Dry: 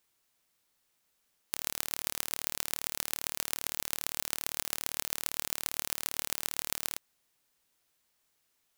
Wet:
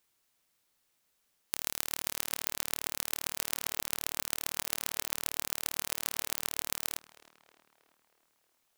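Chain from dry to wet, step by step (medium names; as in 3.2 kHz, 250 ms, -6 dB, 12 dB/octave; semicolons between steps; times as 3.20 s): tape echo 317 ms, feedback 64%, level -15.5 dB, low-pass 2.9 kHz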